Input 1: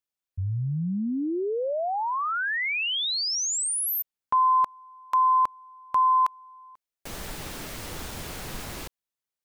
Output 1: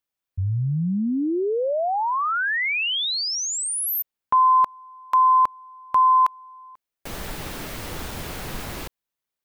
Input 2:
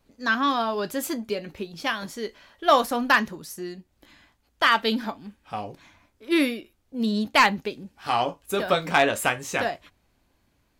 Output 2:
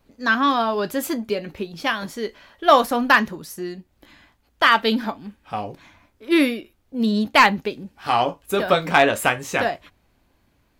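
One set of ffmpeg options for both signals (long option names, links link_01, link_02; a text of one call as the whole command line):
ffmpeg -i in.wav -af "equalizer=frequency=7300:width_type=o:width=1.7:gain=-4,volume=4.5dB" out.wav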